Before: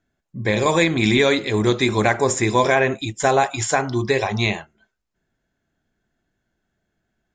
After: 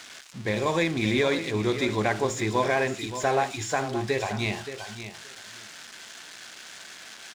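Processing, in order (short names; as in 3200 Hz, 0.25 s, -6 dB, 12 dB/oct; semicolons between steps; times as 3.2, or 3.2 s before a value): switching spikes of -15.5 dBFS; air absorption 100 m; notches 60/120 Hz; feedback echo 0.574 s, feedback 15%, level -11 dB; gain -7 dB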